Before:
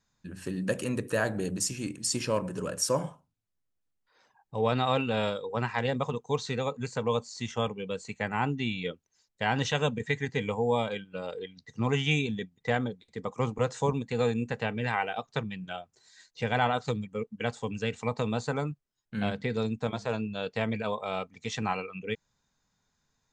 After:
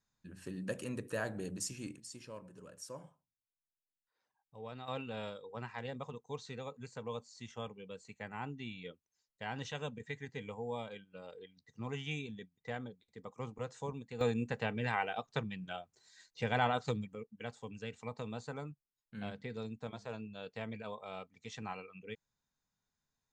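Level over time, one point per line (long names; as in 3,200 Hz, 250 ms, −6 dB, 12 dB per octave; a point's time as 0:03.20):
−9.5 dB
from 0:02.00 −20 dB
from 0:04.88 −13.5 dB
from 0:14.21 −5 dB
from 0:17.15 −12.5 dB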